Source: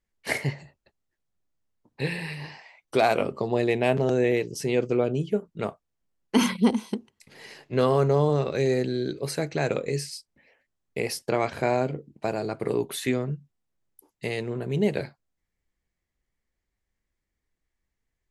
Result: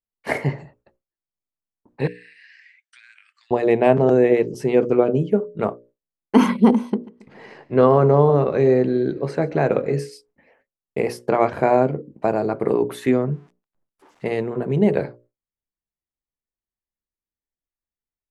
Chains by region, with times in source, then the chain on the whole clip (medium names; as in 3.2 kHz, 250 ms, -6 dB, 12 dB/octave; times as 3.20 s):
2.07–3.51 s: Chebyshev band-pass 1.6–9.1 kHz, order 5 + compression 12:1, threshold -45 dBFS
6.90–9.99 s: distance through air 79 m + feedback delay 138 ms, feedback 55%, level -21 dB
13.32–14.26 s: zero-crossing glitches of -32 dBFS + tape spacing loss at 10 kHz 26 dB
whole clip: hum notches 60/120/180/240/300/360/420/480/540/600 Hz; gate with hold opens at -53 dBFS; FFT filter 110 Hz 0 dB, 230 Hz +4 dB, 1.1 kHz +4 dB, 4.1 kHz -11 dB; trim +4.5 dB